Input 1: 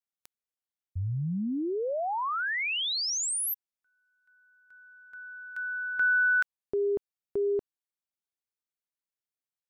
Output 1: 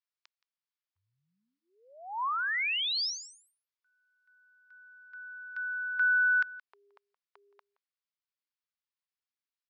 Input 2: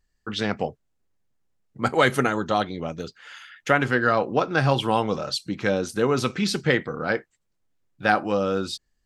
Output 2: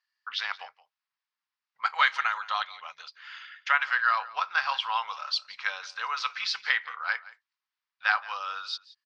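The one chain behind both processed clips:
elliptic band-pass filter 1,000–5,100 Hz, stop band 50 dB
single-tap delay 172 ms −19.5 dB

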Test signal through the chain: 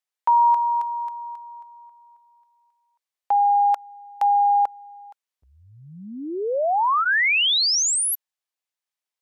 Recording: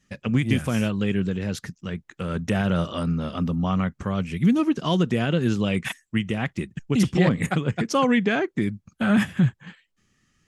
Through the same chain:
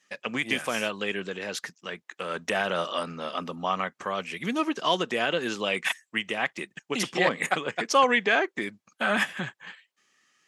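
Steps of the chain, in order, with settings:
high-pass filter 590 Hz 12 dB per octave
high-shelf EQ 9,200 Hz −6.5 dB
notch filter 1,400 Hz, Q 18
level +4 dB

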